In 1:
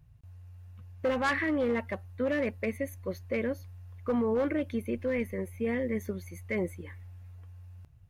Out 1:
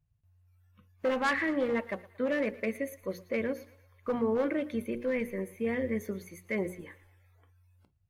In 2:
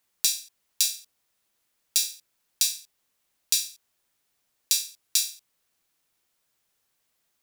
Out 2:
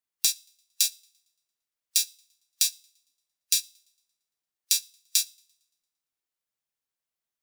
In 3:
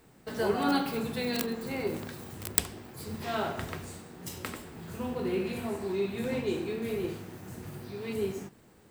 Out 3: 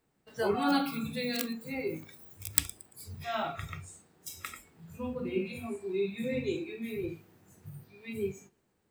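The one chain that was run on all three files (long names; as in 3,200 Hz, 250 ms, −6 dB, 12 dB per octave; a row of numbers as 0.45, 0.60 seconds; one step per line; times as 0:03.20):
mains-hum notches 60/120/180/240/300/360/420/480/540 Hz
feedback echo with a high-pass in the loop 114 ms, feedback 50%, high-pass 450 Hz, level −18 dB
noise reduction from a noise print of the clip's start 16 dB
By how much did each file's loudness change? −0.5, −0.5, −1.0 LU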